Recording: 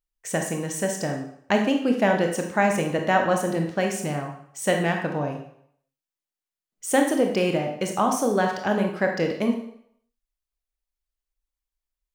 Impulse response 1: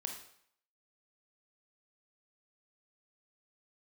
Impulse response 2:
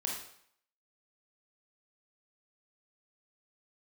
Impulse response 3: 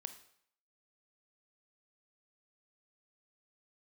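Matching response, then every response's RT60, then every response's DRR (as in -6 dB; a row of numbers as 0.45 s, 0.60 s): 1; 0.65 s, 0.65 s, 0.65 s; 2.5 dB, -1.5 dB, 9.0 dB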